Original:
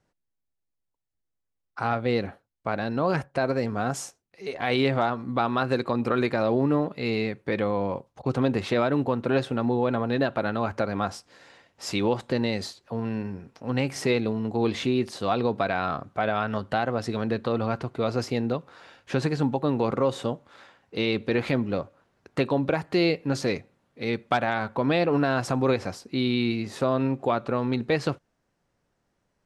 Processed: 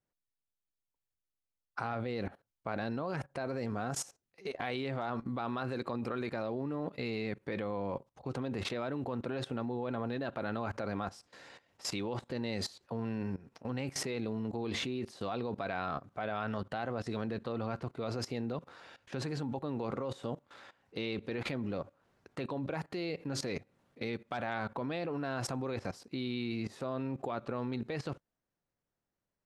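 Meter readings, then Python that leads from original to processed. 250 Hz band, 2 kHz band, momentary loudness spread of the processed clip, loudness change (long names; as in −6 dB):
−11.0 dB, −11.0 dB, 6 LU, −11.0 dB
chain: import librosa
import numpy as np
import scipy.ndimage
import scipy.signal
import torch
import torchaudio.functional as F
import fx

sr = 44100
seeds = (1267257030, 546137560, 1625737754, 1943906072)

y = fx.level_steps(x, sr, step_db=18)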